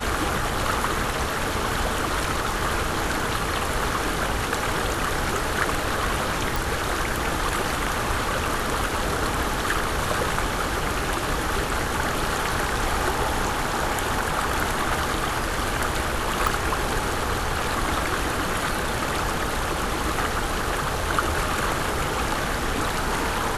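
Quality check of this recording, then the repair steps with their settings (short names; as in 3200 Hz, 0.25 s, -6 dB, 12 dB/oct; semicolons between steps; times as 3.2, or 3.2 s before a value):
6.56 pop
16.47 pop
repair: de-click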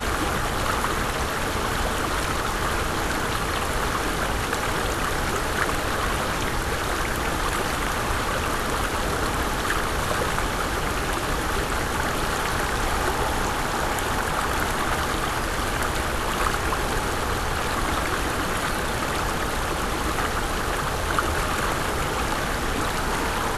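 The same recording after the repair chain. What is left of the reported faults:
16.47 pop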